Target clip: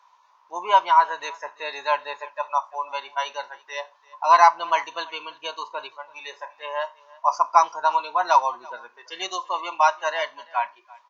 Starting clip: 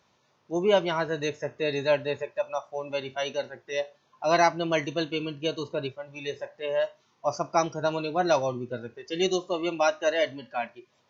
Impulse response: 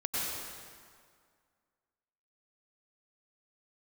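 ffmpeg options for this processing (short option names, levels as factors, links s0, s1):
-af "highpass=f=980:t=q:w=8.8,aecho=1:1:338:0.0708"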